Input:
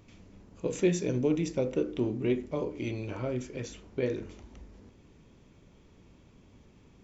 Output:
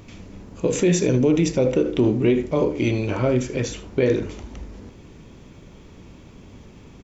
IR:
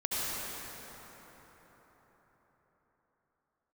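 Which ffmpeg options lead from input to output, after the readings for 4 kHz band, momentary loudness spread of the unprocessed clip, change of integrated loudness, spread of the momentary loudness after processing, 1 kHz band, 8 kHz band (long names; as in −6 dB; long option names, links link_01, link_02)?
+12.0 dB, 11 LU, +10.5 dB, 14 LU, +11.5 dB, can't be measured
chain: -af "aecho=1:1:77:0.158,alimiter=level_in=21.5dB:limit=-1dB:release=50:level=0:latency=1,volume=-8.5dB"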